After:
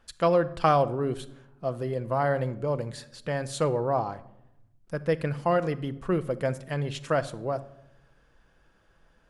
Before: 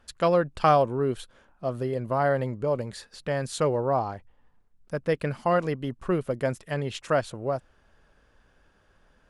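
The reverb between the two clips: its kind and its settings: simulated room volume 2500 m³, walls furnished, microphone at 0.71 m; trim -1.5 dB

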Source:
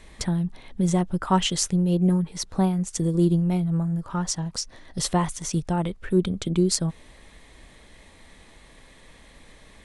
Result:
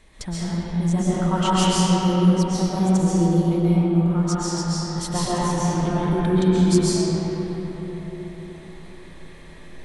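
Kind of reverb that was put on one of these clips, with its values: algorithmic reverb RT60 4.9 s, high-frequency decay 0.45×, pre-delay 95 ms, DRR -10 dB; trim -5.5 dB

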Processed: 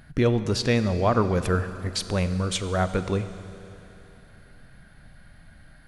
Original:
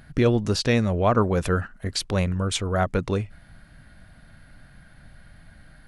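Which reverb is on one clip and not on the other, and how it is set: Schroeder reverb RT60 3.1 s, combs from 33 ms, DRR 11 dB; trim -1.5 dB

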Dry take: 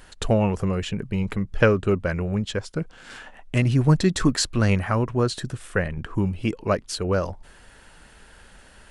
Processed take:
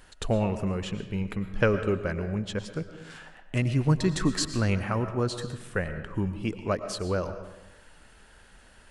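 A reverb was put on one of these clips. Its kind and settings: algorithmic reverb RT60 1 s, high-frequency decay 0.65×, pre-delay 75 ms, DRR 9.5 dB; trim -5.5 dB

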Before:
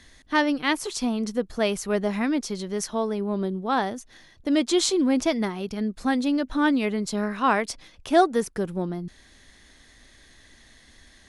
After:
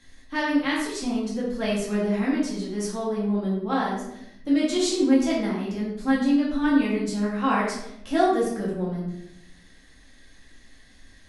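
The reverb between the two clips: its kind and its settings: simulated room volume 210 m³, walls mixed, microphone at 2.2 m; trim -9 dB

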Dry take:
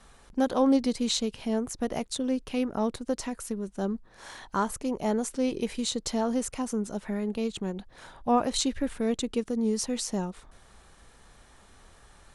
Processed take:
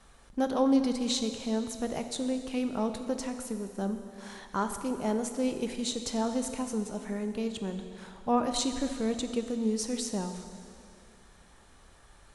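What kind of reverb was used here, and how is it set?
plate-style reverb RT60 2.4 s, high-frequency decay 1×, DRR 7 dB; trim -3 dB

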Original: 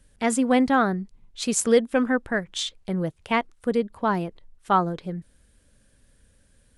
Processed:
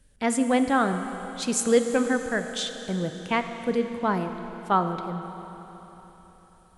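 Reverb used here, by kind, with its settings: Schroeder reverb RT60 3.9 s, combs from 26 ms, DRR 7.5 dB; trim -2 dB

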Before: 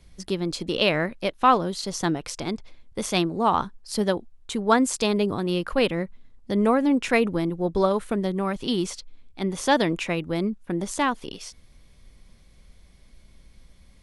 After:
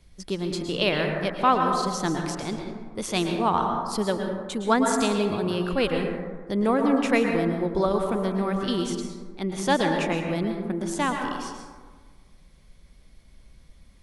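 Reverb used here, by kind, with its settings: plate-style reverb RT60 1.5 s, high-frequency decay 0.35×, pre-delay 100 ms, DRR 2.5 dB; trim -2.5 dB

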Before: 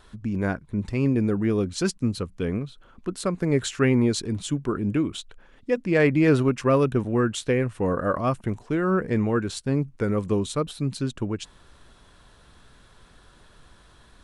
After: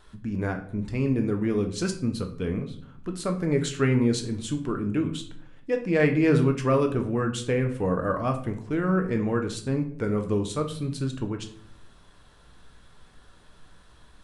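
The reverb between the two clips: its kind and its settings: simulated room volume 75 m³, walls mixed, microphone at 0.44 m; trim -3.5 dB

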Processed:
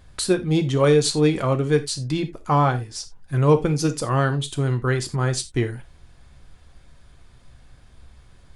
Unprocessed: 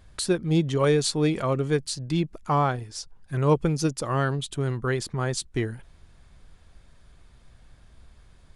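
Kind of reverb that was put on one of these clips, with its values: gated-style reverb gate 110 ms falling, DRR 7 dB; trim +3 dB

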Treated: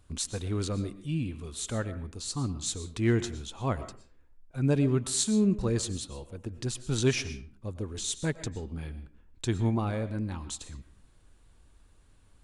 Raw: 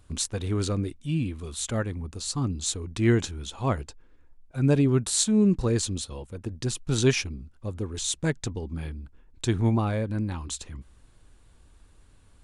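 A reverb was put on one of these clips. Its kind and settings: algorithmic reverb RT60 0.43 s, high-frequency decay 0.7×, pre-delay 75 ms, DRR 12.5 dB; trim -4 dB

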